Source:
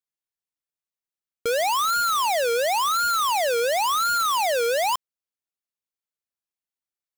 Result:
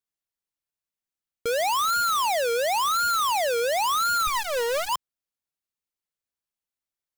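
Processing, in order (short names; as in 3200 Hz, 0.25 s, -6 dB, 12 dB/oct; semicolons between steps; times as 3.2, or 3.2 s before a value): 4.27–4.89 minimum comb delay 1.9 ms; low shelf 120 Hz +5.5 dB; limiter -22.5 dBFS, peak gain reduction 6.5 dB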